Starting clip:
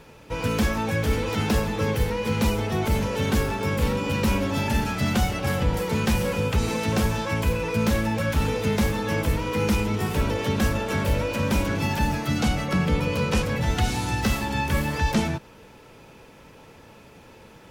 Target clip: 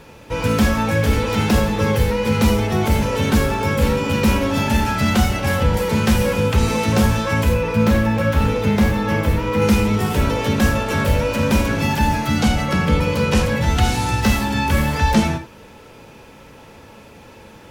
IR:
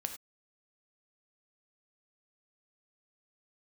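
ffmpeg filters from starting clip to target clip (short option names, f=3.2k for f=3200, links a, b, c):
-filter_complex "[0:a]asettb=1/sr,asplit=3[a][b][c];[a]atrim=end=7.544[d];[b]atrim=start=7.54:end=9.62,asetpts=PTS-STARTPTS,afade=t=in:d=0.004:c=qsin,afade=t=out:st=2.076:d=0.004:c=qsin,equalizer=f=8.6k:w=0.46:g=-7[e];[c]atrim=start=9.616[f];[d][e]acrossfade=d=0.004:c1=hsin:c2=qsin[g];[g][f]acrossfade=d=0.004:c1=qsin:c2=hsin[h];[1:a]atrim=start_sample=2205,atrim=end_sample=3969[i];[h][i]afir=irnorm=-1:irlink=0,volume=6dB"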